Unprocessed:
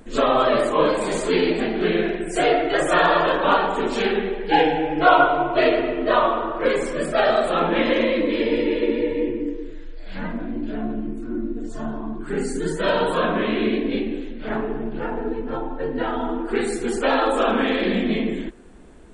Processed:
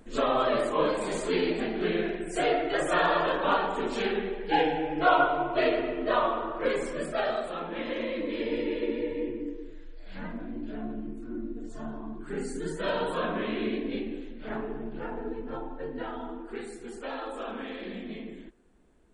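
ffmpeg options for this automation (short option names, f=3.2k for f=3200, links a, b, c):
-af "volume=-0.5dB,afade=t=out:st=6.88:d=0.77:silence=0.375837,afade=t=in:st=7.65:d=0.93:silence=0.446684,afade=t=out:st=15.58:d=1.16:silence=0.398107"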